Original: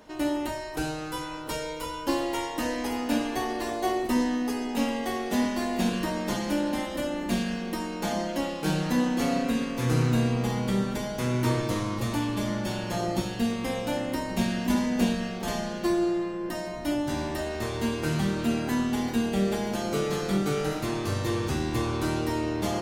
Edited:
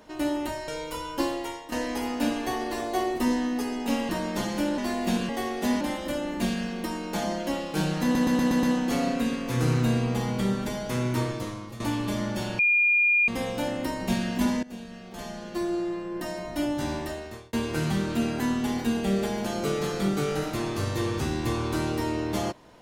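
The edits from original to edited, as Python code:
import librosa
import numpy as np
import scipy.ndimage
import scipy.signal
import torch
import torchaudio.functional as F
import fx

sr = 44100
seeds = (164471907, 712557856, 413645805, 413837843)

y = fx.edit(x, sr, fx.cut(start_s=0.68, length_s=0.89),
    fx.fade_out_to(start_s=2.09, length_s=0.52, floor_db=-12.0),
    fx.swap(start_s=4.98, length_s=0.52, other_s=6.01, other_length_s=0.69),
    fx.stutter(start_s=8.92, slice_s=0.12, count=6),
    fx.fade_out_to(start_s=11.28, length_s=0.81, floor_db=-13.5),
    fx.bleep(start_s=12.88, length_s=0.69, hz=2420.0, db=-18.0),
    fx.fade_in_from(start_s=14.92, length_s=1.7, floor_db=-20.0),
    fx.fade_out_span(start_s=17.24, length_s=0.58), tone=tone)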